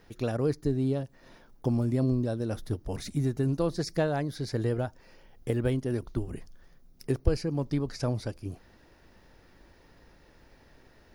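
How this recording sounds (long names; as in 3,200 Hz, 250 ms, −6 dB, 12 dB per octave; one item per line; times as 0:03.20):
background noise floor −59 dBFS
spectral slope −8.0 dB per octave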